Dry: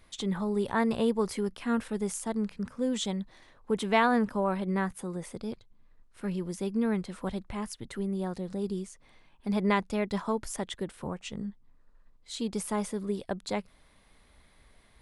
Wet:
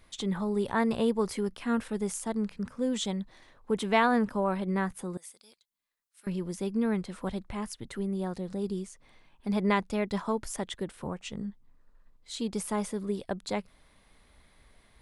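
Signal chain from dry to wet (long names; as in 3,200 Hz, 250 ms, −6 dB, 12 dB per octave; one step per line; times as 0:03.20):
0:05.17–0:06.27: first difference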